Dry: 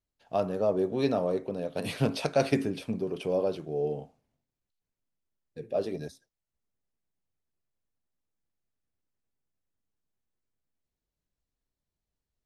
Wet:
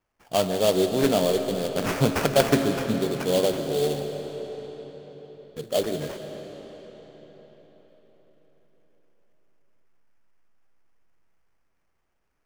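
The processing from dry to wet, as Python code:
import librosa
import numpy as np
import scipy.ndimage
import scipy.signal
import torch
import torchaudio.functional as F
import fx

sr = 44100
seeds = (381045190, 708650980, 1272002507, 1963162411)

y = fx.high_shelf(x, sr, hz=4700.0, db=11.0)
y = fx.sample_hold(y, sr, seeds[0], rate_hz=3900.0, jitter_pct=20)
y = fx.rev_freeverb(y, sr, rt60_s=4.9, hf_ratio=0.8, predelay_ms=95, drr_db=7.0)
y = y * librosa.db_to_amplitude(5.0)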